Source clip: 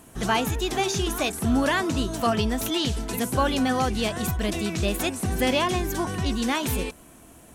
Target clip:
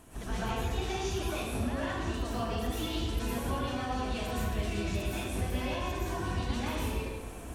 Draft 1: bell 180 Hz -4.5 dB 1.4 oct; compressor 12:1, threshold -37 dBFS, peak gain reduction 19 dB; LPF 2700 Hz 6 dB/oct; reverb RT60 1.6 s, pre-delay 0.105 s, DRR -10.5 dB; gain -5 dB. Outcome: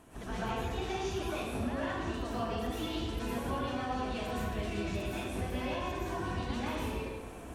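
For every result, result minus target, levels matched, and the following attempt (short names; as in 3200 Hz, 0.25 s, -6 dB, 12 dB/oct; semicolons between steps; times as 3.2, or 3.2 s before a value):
8000 Hz band -4.0 dB; 125 Hz band -2.0 dB
bell 180 Hz -4.5 dB 1.4 oct; compressor 12:1, threshold -37 dBFS, peak gain reduction 19 dB; LPF 7000 Hz 6 dB/oct; reverb RT60 1.6 s, pre-delay 0.105 s, DRR -10.5 dB; gain -5 dB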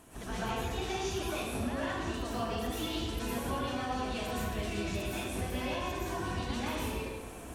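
125 Hz band -3.0 dB
bell 180 Hz -4.5 dB 1.4 oct; compressor 12:1, threshold -37 dBFS, peak gain reduction 19 dB; LPF 7000 Hz 6 dB/oct; low shelf 97 Hz +8 dB; reverb RT60 1.6 s, pre-delay 0.105 s, DRR -10.5 dB; gain -5 dB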